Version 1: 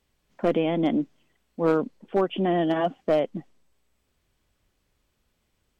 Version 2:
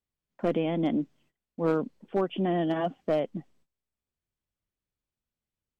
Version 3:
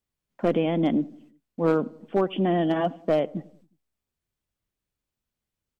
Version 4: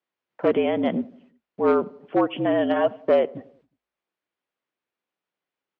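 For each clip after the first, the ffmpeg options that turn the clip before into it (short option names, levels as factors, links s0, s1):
-af "agate=range=0.158:threshold=0.00126:ratio=16:detection=peak,equalizer=f=140:t=o:w=1.7:g=4,volume=0.562"
-filter_complex "[0:a]asplit=2[s0][s1];[s1]adelay=90,lowpass=f=1100:p=1,volume=0.0944,asplit=2[s2][s3];[s3]adelay=90,lowpass=f=1100:p=1,volume=0.55,asplit=2[s4][s5];[s5]adelay=90,lowpass=f=1100:p=1,volume=0.55,asplit=2[s6][s7];[s7]adelay=90,lowpass=f=1100:p=1,volume=0.55[s8];[s0][s2][s4][s6][s8]amix=inputs=5:normalize=0,volume=1.58"
-af "afreqshift=-52,highpass=350,lowpass=2800,volume=1.88"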